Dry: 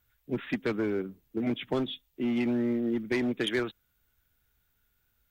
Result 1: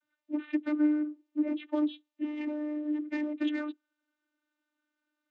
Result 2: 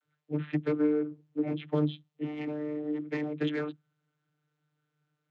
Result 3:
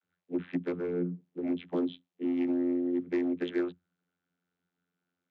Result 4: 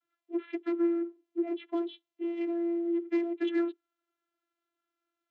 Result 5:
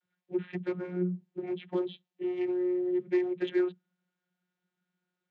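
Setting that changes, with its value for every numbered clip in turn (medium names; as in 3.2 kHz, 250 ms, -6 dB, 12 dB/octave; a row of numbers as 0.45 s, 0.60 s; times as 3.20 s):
vocoder, frequency: 300 Hz, 150 Hz, 88 Hz, 340 Hz, 180 Hz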